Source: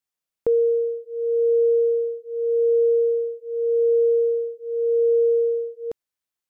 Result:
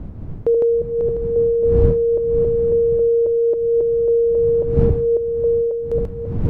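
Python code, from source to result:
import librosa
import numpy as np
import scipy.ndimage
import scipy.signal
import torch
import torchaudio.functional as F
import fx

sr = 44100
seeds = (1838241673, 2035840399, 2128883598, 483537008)

y = fx.reverse_delay_fb(x, sr, ms=272, feedback_pct=57, wet_db=-1.5)
y = fx.dmg_wind(y, sr, seeds[0], corner_hz=120.0, level_db=-24.0)
y = fx.rider(y, sr, range_db=4, speed_s=0.5)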